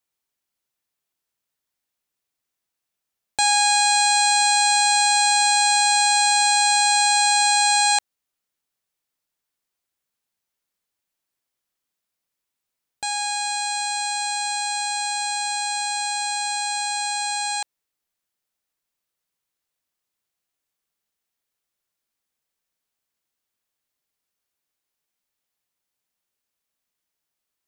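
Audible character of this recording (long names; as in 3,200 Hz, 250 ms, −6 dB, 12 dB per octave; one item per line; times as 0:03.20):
background noise floor −83 dBFS
spectral slope +4.0 dB per octave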